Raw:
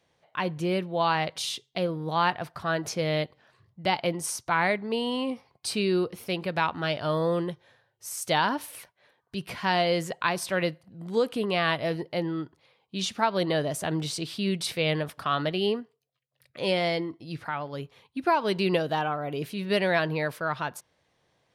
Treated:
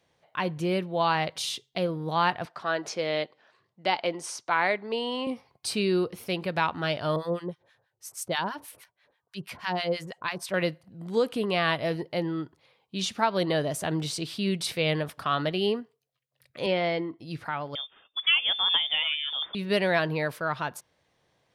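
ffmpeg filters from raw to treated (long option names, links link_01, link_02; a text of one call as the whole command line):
ffmpeg -i in.wav -filter_complex "[0:a]asettb=1/sr,asplit=3[link_01][link_02][link_03];[link_01]atrim=end=2.454[link_04];[link_02]atrim=start=2.45:end=5.27,asetpts=PTS-STARTPTS,afade=type=in:duration=0.004:curve=qsin,afade=type=out:start_time=2.816:duration=0.004:curve=qsin,highpass=300,lowpass=6600[link_05];[link_03]atrim=start=5.266[link_06];[link_04][link_05]acrossfade=duration=0.004:curve1=hsin:curve2=qsin[link_07];[link_07][link_06]acrossfade=duration=0.004:curve1=qsin:curve2=hsin,asettb=1/sr,asplit=3[link_08][link_09][link_10];[link_08]atrim=end=7.164[link_11];[link_09]atrim=start=7.16:end=10.54,asetpts=PTS-STARTPTS,afade=type=in:duration=0.004:curve=qsin,afade=type=out:start_time=3.376:duration=0.004:curve=qsin,acrossover=split=1000[link_12][link_13];[link_12]aeval=exprs='val(0)*(1-1/2+1/2*cos(2*PI*6.2*n/s))':channel_layout=same[link_14];[link_13]aeval=exprs='val(0)*(1-1/2-1/2*cos(2*PI*6.2*n/s))':channel_layout=same[link_15];[link_14][link_15]amix=inputs=2:normalize=0[link_16];[link_10]atrim=start=10.536[link_17];[link_11][link_16]acrossfade=duration=0.004:curve1=hsin:curve2=qsin[link_18];[link_18][link_17]acrossfade=duration=0.004:curve1=qsin:curve2=hsin,asettb=1/sr,asplit=3[link_19][link_20][link_21];[link_19]atrim=end=16.664[link_22];[link_20]atrim=start=16.66:end=17.19,asetpts=PTS-STARTPTS,afade=type=in:duration=0.004:curve=qsin,afade=type=out:start_time=0.526:duration=0.004:curve=qsin,highpass=140,lowpass=3100[link_23];[link_21]atrim=start=17.186[link_24];[link_22][link_23]acrossfade=duration=0.004:curve1=hsin:curve2=qsin[link_25];[link_25][link_24]acrossfade=duration=0.004:curve1=qsin:curve2=hsin,asettb=1/sr,asplit=3[link_26][link_27][link_28];[link_26]atrim=end=17.754[link_29];[link_27]atrim=start=17.75:end=19.55,asetpts=PTS-STARTPTS,afade=type=in:duration=0.004:curve=qsin,afade=type=out:start_time=1.796:duration=0.004:curve=qsin,lowpass=frequency=3100:width_type=q:width=0.5098,lowpass=frequency=3100:width_type=q:width=0.6013,lowpass=frequency=3100:width_type=q:width=0.9,lowpass=frequency=3100:width_type=q:width=2.563,afreqshift=-3700[link_30];[link_28]atrim=start=19.546[link_31];[link_29][link_30]acrossfade=duration=0.004:curve1=hsin:curve2=qsin[link_32];[link_32][link_31]acrossfade=duration=0.004:curve1=qsin:curve2=hsin" out.wav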